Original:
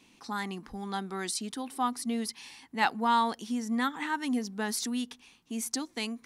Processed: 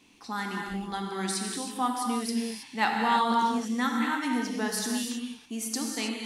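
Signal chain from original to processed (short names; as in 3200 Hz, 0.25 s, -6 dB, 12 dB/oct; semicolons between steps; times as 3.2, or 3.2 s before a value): non-linear reverb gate 0.35 s flat, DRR 0 dB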